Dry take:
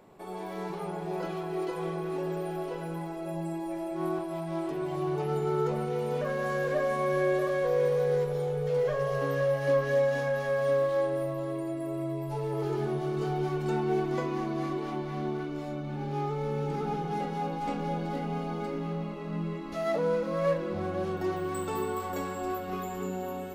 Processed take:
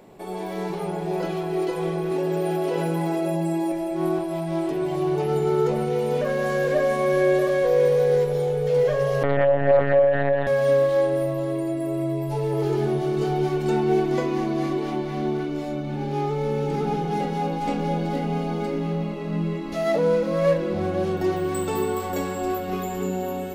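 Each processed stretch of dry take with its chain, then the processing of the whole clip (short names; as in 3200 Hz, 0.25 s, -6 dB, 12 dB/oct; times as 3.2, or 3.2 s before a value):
2.11–3.72 HPF 130 Hz + fast leveller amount 100%
9.23–10.47 low shelf 130 Hz +10 dB + monotone LPC vocoder at 8 kHz 140 Hz + Doppler distortion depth 0.37 ms
whole clip: bell 1200 Hz -6 dB 0.82 oct; notches 50/100/150 Hz; gain +8 dB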